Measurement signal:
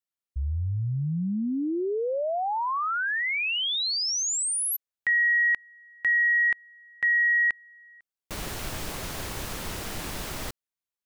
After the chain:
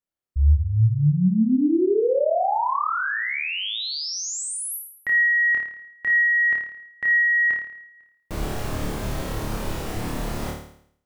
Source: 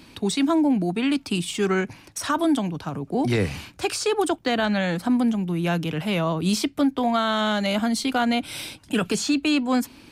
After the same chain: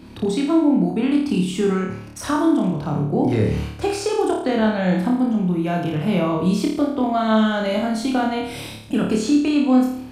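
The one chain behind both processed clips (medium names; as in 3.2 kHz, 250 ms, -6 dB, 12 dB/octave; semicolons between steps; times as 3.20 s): tilt shelf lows +6 dB, about 1.2 kHz; compression, threshold -18 dBFS; flutter echo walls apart 4.7 m, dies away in 0.64 s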